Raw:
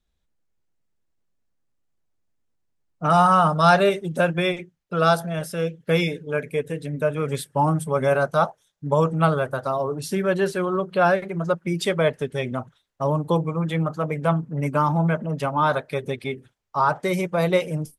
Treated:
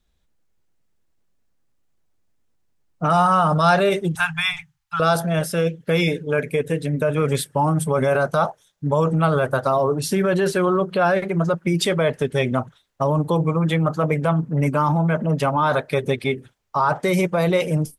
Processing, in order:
0:04.15–0:05.00: Chebyshev band-stop filter 150–790 Hz, order 5
in parallel at −1 dB: compressor whose output falls as the input rises −24 dBFS, ratio −0.5
on the sum: level −1 dB

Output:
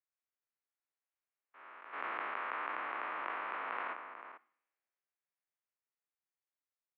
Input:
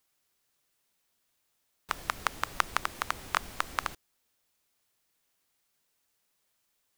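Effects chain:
spectrum averaged block by block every 400 ms
source passing by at 0:02.95, 14 m/s, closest 14 metres
low-shelf EQ 500 Hz −8 dB
slap from a distant wall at 76 metres, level −8 dB
on a send at −21 dB: convolution reverb RT60 0.70 s, pre-delay 47 ms
on the sum: single-sideband voice off tune −68 Hz 380–2,500 Hz
harmonic and percussive parts rebalanced percussive −9 dB
in parallel at −1 dB: compressor whose output falls as the input rises −52 dBFS, ratio −0.5
on the sum: multiband upward and downward expander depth 40%
level +5.5 dB

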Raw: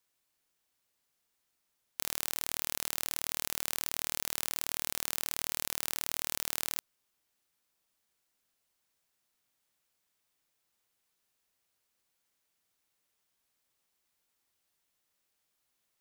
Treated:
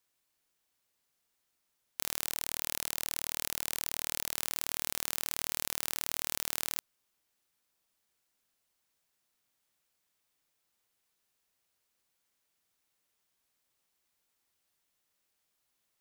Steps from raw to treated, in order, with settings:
0:02.24–0:04.35: parametric band 970 Hz −12 dB 0.23 octaves

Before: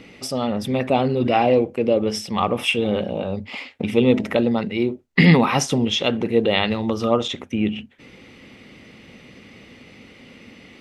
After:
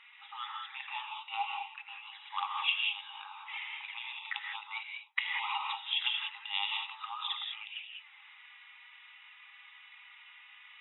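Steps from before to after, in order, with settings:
flanger swept by the level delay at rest 4.8 ms, full sweep at −16.5 dBFS
downward compressor 2.5 to 1, threshold −22 dBFS, peak gain reduction 9 dB
reverb whose tail is shaped and stops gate 220 ms rising, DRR 0.5 dB
brick-wall band-pass 790–3,900 Hz
level −4.5 dB

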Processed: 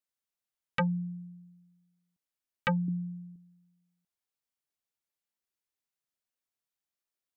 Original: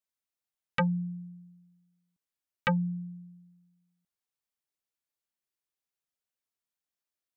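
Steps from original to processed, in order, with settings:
0:02.88–0:03.36: parametric band 290 Hz +11.5 dB 1.1 octaves
level −1.5 dB

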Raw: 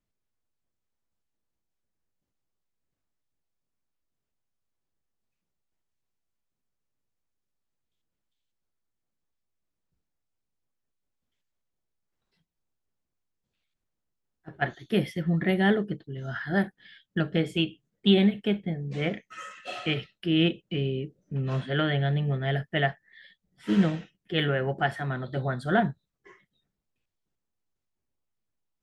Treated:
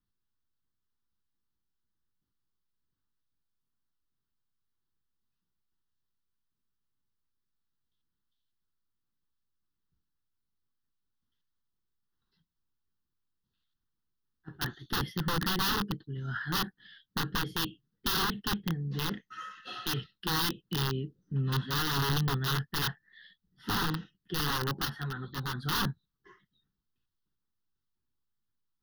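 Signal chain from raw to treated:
wrap-around overflow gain 21.5 dB
phaser with its sweep stopped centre 2,300 Hz, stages 6
0:24.85–0:25.63: string-ensemble chorus

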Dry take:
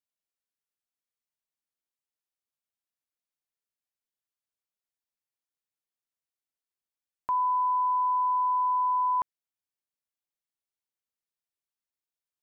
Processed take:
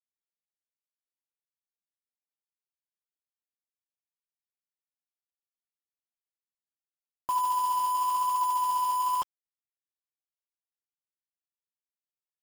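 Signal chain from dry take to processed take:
low-pass filter 1,100 Hz 12 dB per octave
flanger 0.95 Hz, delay 1.9 ms, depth 7.9 ms, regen +79%
bit reduction 7 bits
level +5 dB

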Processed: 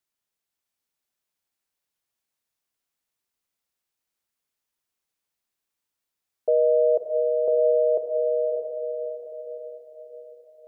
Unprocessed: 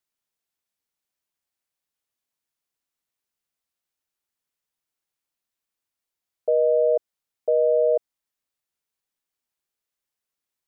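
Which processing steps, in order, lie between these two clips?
feedback delay with all-pass diffusion 623 ms, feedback 46%, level −4 dB

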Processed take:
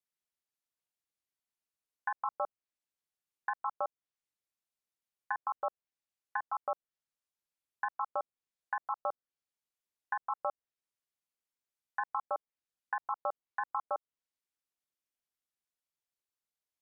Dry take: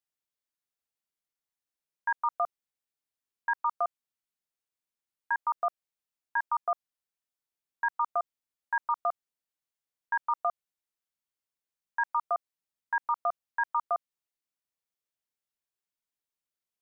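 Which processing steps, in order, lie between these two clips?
treble cut that deepens with the level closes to 1,000 Hz, closed at −28.5 dBFS
ring modulation 110 Hz

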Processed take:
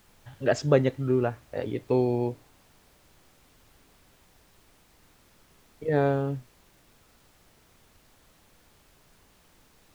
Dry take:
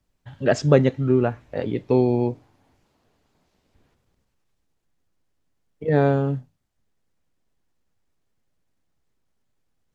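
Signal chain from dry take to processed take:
parametric band 190 Hz −6.5 dB
background noise pink −56 dBFS
level −4 dB

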